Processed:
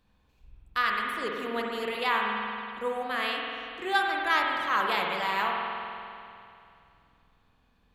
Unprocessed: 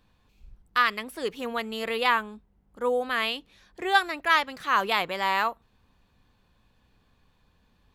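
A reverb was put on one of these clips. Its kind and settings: spring tank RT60 2.6 s, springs 47 ms, chirp 70 ms, DRR -1 dB; trim -5 dB

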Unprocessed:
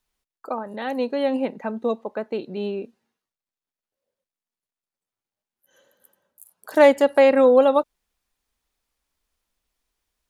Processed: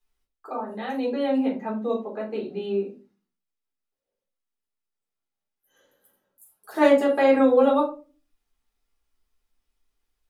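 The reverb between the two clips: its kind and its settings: simulated room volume 160 m³, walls furnished, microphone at 3.9 m; trim -11 dB

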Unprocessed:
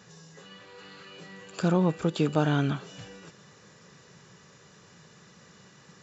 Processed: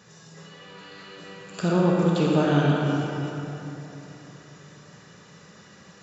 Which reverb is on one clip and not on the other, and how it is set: algorithmic reverb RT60 3.4 s, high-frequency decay 0.55×, pre-delay 5 ms, DRR -3.5 dB

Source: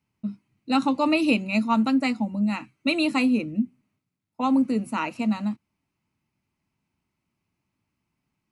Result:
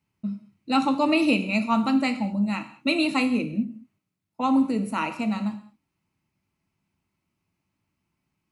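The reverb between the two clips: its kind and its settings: gated-style reverb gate 240 ms falling, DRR 7.5 dB

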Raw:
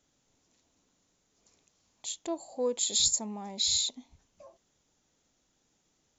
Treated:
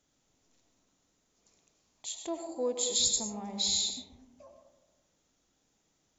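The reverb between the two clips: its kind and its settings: algorithmic reverb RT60 1.1 s, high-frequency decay 0.3×, pre-delay 60 ms, DRR 4.5 dB; trim -2 dB

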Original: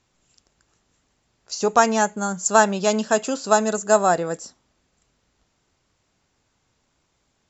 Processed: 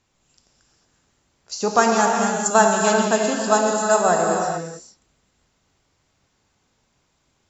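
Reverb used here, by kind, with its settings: gated-style reverb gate 480 ms flat, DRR 0 dB; trim -1 dB

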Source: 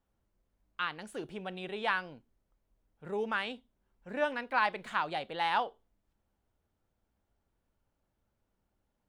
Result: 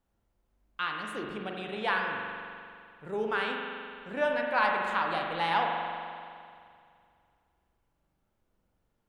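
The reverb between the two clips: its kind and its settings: spring tank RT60 2.3 s, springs 42 ms, chirp 60 ms, DRR 0.5 dB; trim +1 dB

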